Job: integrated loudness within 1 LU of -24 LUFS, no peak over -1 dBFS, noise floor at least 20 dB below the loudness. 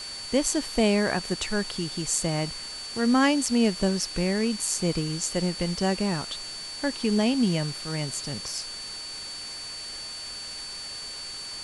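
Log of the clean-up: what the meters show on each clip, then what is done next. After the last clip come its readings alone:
steady tone 4.5 kHz; tone level -36 dBFS; noise floor -38 dBFS; noise floor target -47 dBFS; loudness -27.0 LUFS; peak level -8.5 dBFS; loudness target -24.0 LUFS
-> band-stop 4.5 kHz, Q 30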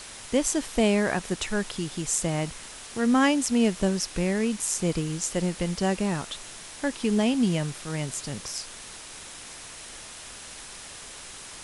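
steady tone not found; noise floor -43 dBFS; noise floor target -47 dBFS
-> noise reduction 6 dB, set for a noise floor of -43 dBFS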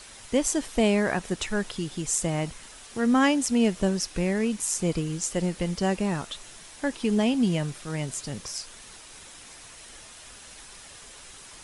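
noise floor -47 dBFS; loudness -26.5 LUFS; peak level -8.5 dBFS; loudness target -24.0 LUFS
-> trim +2.5 dB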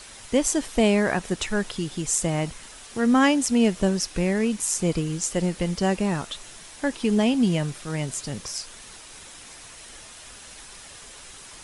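loudness -24.0 LUFS; peak level -6.0 dBFS; noise floor -44 dBFS

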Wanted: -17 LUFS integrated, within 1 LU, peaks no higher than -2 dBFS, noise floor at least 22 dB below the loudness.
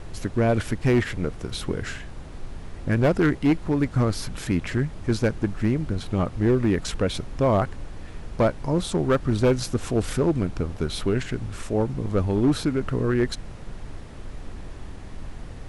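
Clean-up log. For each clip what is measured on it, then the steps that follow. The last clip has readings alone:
clipped samples 1.4%; clipping level -14.0 dBFS; noise floor -39 dBFS; noise floor target -47 dBFS; loudness -24.5 LUFS; peak level -14.0 dBFS; loudness target -17.0 LUFS
-> clip repair -14 dBFS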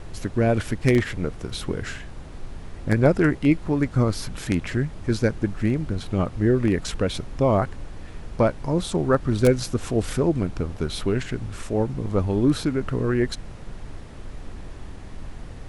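clipped samples 0.0%; noise floor -39 dBFS; noise floor target -46 dBFS
-> noise print and reduce 7 dB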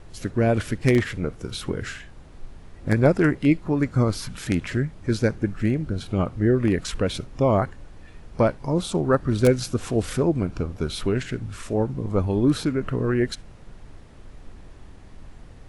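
noise floor -45 dBFS; noise floor target -46 dBFS
-> noise print and reduce 6 dB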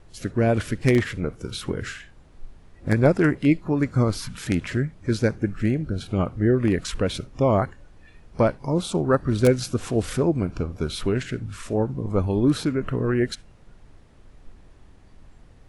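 noise floor -51 dBFS; loudness -24.0 LUFS; peak level -5.0 dBFS; loudness target -17.0 LUFS
-> trim +7 dB; peak limiter -2 dBFS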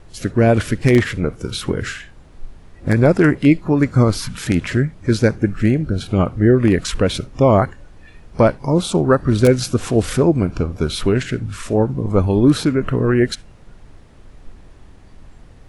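loudness -17.0 LUFS; peak level -2.0 dBFS; noise floor -44 dBFS

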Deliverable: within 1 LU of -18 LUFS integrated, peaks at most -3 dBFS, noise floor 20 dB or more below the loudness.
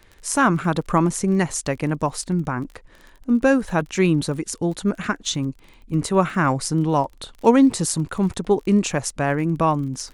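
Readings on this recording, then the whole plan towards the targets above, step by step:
tick rate 28 per s; loudness -21.5 LUFS; peak level -1.5 dBFS; loudness target -18.0 LUFS
-> de-click; trim +3.5 dB; peak limiter -3 dBFS

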